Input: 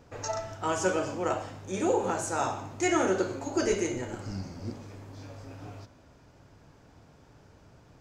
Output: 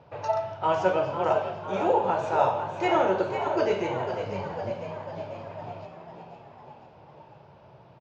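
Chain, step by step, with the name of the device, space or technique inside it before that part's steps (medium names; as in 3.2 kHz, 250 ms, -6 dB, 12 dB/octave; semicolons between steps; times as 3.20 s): frequency-shifting delay pedal into a guitar cabinet (frequency-shifting echo 500 ms, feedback 58%, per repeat +69 Hz, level -8.5 dB; cabinet simulation 93–4100 Hz, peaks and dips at 140 Hz +7 dB, 270 Hz -9 dB, 610 Hz +8 dB, 910 Hz +9 dB, 1.8 kHz -3 dB, 2.7 kHz +3 dB)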